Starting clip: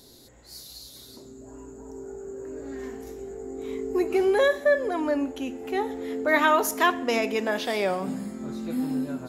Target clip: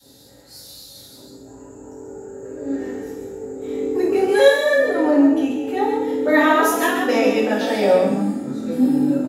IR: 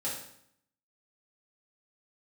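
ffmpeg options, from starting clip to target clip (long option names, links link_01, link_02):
-filter_complex "[0:a]asettb=1/sr,asplit=3[link_01][link_02][link_03];[link_01]atrim=end=4.284[link_04];[link_02]atrim=start=4.28:end=4.76,asetpts=PTS-STARTPTS,afade=type=in:duration=0.004:curve=qsin,afade=type=out:start_time=0.476:duration=0.004:curve=qsin,tiltshelf=frequency=1100:gain=-9[link_05];[link_03]atrim=start=4.756[link_06];[link_04][link_05]acrossfade=duration=0.004:curve1=hsin:curve2=qsin[link_07];[link_07][link_06]acrossfade=duration=0.004:curve1=qsin:curve2=hsin,asplit=5[link_08][link_09][link_10][link_11][link_12];[link_09]adelay=136,afreqshift=37,volume=-5.5dB[link_13];[link_10]adelay=272,afreqshift=74,volume=-15.7dB[link_14];[link_11]adelay=408,afreqshift=111,volume=-25.8dB[link_15];[link_12]adelay=544,afreqshift=148,volume=-36dB[link_16];[link_08][link_13][link_14][link_15][link_16]amix=inputs=5:normalize=0[link_17];[1:a]atrim=start_sample=2205,afade=type=out:start_time=0.15:duration=0.01,atrim=end_sample=7056[link_18];[link_17][link_18]afir=irnorm=-1:irlink=0,adynamicequalizer=threshold=0.0224:dfrequency=320:dqfactor=0.82:tfrequency=320:tqfactor=0.82:attack=5:release=100:ratio=0.375:range=3:mode=boostabove:tftype=bell"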